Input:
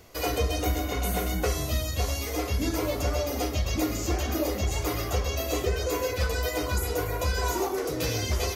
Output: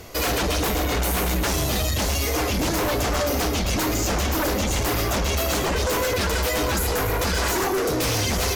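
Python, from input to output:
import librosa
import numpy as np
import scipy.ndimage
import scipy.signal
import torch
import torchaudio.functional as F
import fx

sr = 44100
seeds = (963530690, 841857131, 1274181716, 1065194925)

y = fx.fold_sine(x, sr, drive_db=14, ceiling_db=-13.0)
y = y * 10.0 ** (-6.5 / 20.0)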